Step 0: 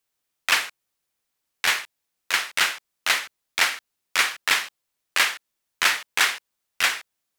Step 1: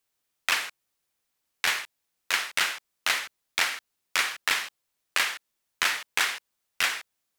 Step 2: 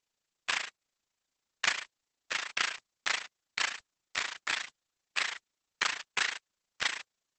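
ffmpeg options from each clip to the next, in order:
-af "acompressor=threshold=-21dB:ratio=5"
-af "tremolo=f=28:d=0.857" -ar 48000 -c:a libopus -b:a 10k

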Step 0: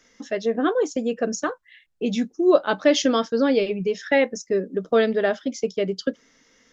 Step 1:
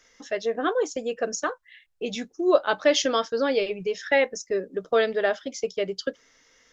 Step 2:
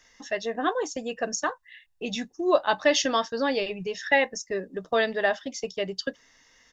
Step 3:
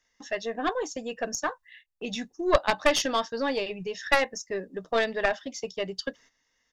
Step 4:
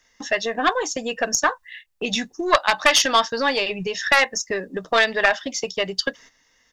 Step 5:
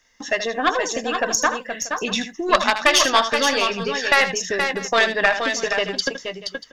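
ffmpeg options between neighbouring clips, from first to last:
-af "equalizer=f=220:t=o:w=1.2:g=-11.5"
-af "aecho=1:1:1.1:0.45"
-af "aeval=exprs='0.447*(cos(1*acos(clip(val(0)/0.447,-1,1)))-cos(1*PI/2))+0.0316*(cos(3*acos(clip(val(0)/0.447,-1,1)))-cos(3*PI/2))+0.2*(cos(4*acos(clip(val(0)/0.447,-1,1)))-cos(4*PI/2))+0.1*(cos(6*acos(clip(val(0)/0.447,-1,1)))-cos(6*PI/2))+0.01*(cos(8*acos(clip(val(0)/0.447,-1,1)))-cos(8*PI/2))':c=same,agate=range=-12dB:threshold=-52dB:ratio=16:detection=peak"
-filter_complex "[0:a]acrossover=split=790[a][b];[a]acompressor=threshold=-37dB:ratio=6[c];[c][b]amix=inputs=2:normalize=0,alimiter=level_in=12.5dB:limit=-1dB:release=50:level=0:latency=1,volume=-1dB"
-af "aecho=1:1:78|474|491|637:0.299|0.473|0.126|0.126"

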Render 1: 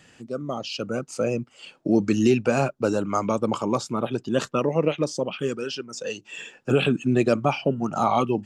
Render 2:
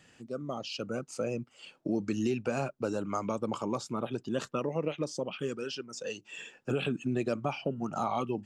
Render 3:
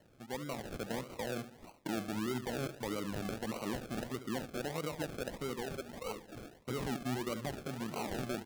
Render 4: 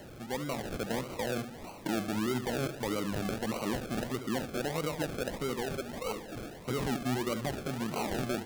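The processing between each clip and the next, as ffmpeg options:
-af "acompressor=threshold=-23dB:ratio=2,volume=-6.5dB"
-filter_complex "[0:a]alimiter=level_in=1dB:limit=-24dB:level=0:latency=1:release=37,volume=-1dB,asplit=2[a][b];[b]aecho=0:1:71|142|213|284|355:0.266|0.122|0.0563|0.0259|0.0119[c];[a][c]amix=inputs=2:normalize=0,acrusher=samples=36:mix=1:aa=0.000001:lfo=1:lforange=21.6:lforate=1.6,volume=-3.5dB"
-af "aeval=exprs='val(0)+0.5*0.00398*sgn(val(0))':c=same,volume=4dB"

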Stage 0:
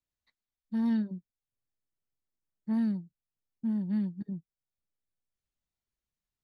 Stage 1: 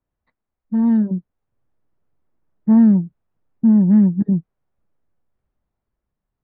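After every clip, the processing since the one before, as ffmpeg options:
-filter_complex "[0:a]asplit=2[a][b];[b]alimiter=level_in=8.5dB:limit=-24dB:level=0:latency=1:release=89,volume=-8.5dB,volume=2dB[c];[a][c]amix=inputs=2:normalize=0,lowpass=1.1k,dynaudnorm=f=230:g=11:m=6.5dB,volume=7.5dB"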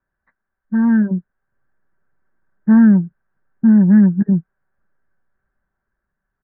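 -af "lowpass=f=1.6k:t=q:w=9,aecho=1:1:5.2:0.33"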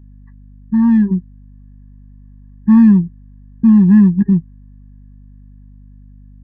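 -filter_complex "[0:a]asplit=2[a][b];[b]volume=14dB,asoftclip=hard,volume=-14dB,volume=-6dB[c];[a][c]amix=inputs=2:normalize=0,aeval=exprs='val(0)+0.0112*(sin(2*PI*50*n/s)+sin(2*PI*2*50*n/s)/2+sin(2*PI*3*50*n/s)/3+sin(2*PI*4*50*n/s)/4+sin(2*PI*5*50*n/s)/5)':c=same,afftfilt=real='re*eq(mod(floor(b*sr/1024/400),2),0)':imag='im*eq(mod(floor(b*sr/1024/400),2),0)':win_size=1024:overlap=0.75"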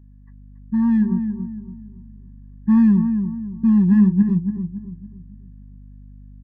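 -filter_complex "[0:a]asplit=2[a][b];[b]adelay=280,lowpass=f=1.1k:p=1,volume=-7dB,asplit=2[c][d];[d]adelay=280,lowpass=f=1.1k:p=1,volume=0.39,asplit=2[e][f];[f]adelay=280,lowpass=f=1.1k:p=1,volume=0.39,asplit=2[g][h];[h]adelay=280,lowpass=f=1.1k:p=1,volume=0.39,asplit=2[i][j];[j]adelay=280,lowpass=f=1.1k:p=1,volume=0.39[k];[a][c][e][g][i][k]amix=inputs=6:normalize=0,volume=-6dB"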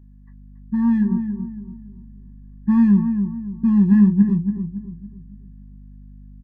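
-filter_complex "[0:a]asplit=2[a][b];[b]adelay=25,volume=-9.5dB[c];[a][c]amix=inputs=2:normalize=0"

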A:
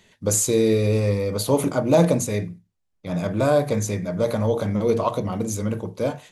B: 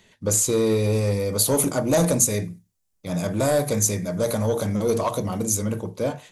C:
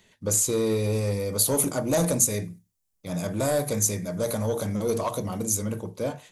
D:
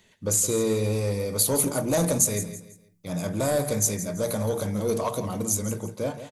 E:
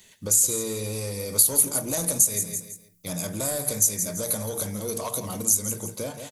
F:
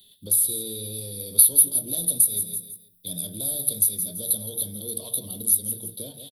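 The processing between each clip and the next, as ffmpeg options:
-filter_complex "[0:a]acrossover=split=5800[a][b];[a]asoftclip=type=tanh:threshold=-13.5dB[c];[b]dynaudnorm=f=200:g=9:m=13dB[d];[c][d]amix=inputs=2:normalize=0"
-af "highshelf=f=9.2k:g=5,volume=-4dB"
-af "aecho=1:1:166|332|498:0.237|0.0759|0.0243"
-af "acompressor=threshold=-30dB:ratio=4,crystalizer=i=3.5:c=0"
-filter_complex "[0:a]firequalizer=gain_entry='entry(370,0);entry(1100,-19);entry(2300,-17);entry(3500,13);entry(6800,-25);entry(9700,10)':delay=0.05:min_phase=1,acrossover=split=250|710|4100[a][b][c][d];[c]asoftclip=type=hard:threshold=-31dB[e];[a][b][e][d]amix=inputs=4:normalize=0,volume=-5.5dB"

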